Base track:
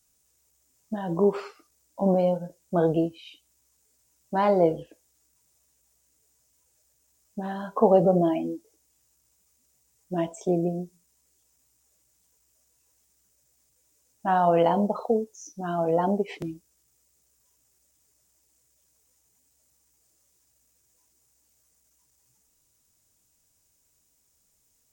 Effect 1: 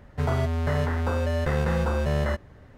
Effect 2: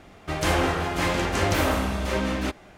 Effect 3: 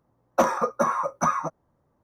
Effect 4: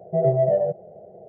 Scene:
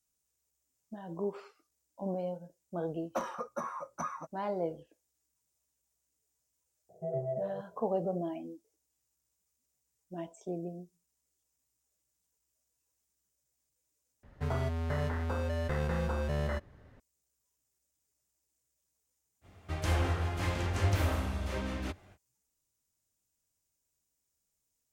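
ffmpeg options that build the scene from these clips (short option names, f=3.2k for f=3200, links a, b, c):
-filter_complex "[0:a]volume=-13.5dB[a];[2:a]equalizer=f=89:w=2.4:g=14.5[b];[a]asplit=2[c][d];[c]atrim=end=14.234[e];[1:a]atrim=end=2.77,asetpts=PTS-STARTPTS,volume=-8dB[f];[d]atrim=start=16.996[g];[3:a]atrim=end=2.03,asetpts=PTS-STARTPTS,volume=-14.5dB,afade=t=in:d=0.004:c=hsin,afade=t=out:st=2.026:d=0.004:c=hsin,adelay=2770[h];[4:a]atrim=end=1.28,asetpts=PTS-STARTPTS,volume=-15.5dB,afade=t=in:d=0.004:c=hsin,afade=t=out:st=1.276:d=0.004:c=hsin,adelay=6890[i];[b]atrim=end=2.77,asetpts=PTS-STARTPTS,volume=-12dB,afade=t=in:d=0.05,afade=t=out:st=2.72:d=0.05,adelay=19410[j];[e][f]acrossfade=d=0.004:c1=hsin:c2=hsin[k];[k][g]acrossfade=d=0.004:c1=hsin:c2=hsin[l];[l][h][i][j]amix=inputs=4:normalize=0"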